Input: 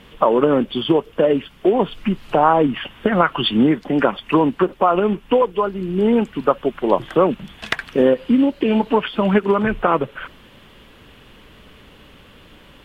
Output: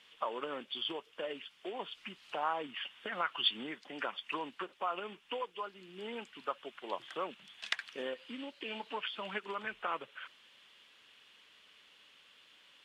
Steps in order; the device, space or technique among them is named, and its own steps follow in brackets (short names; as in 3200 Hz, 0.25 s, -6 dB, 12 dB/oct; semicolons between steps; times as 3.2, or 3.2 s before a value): piezo pickup straight into a mixer (LPF 5000 Hz 12 dB/oct; differentiator); gain -2 dB